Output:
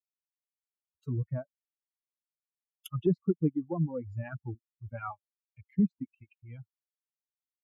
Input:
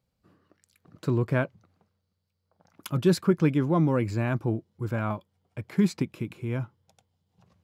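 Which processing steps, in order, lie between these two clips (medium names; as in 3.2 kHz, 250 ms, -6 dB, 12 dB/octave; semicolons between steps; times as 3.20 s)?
expander on every frequency bin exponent 3; reverb removal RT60 1.1 s; low-pass that closes with the level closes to 470 Hz, closed at -27.5 dBFS; 4.95–5.61 s: resonant low-pass 2.5 kHz, resonance Q 2.5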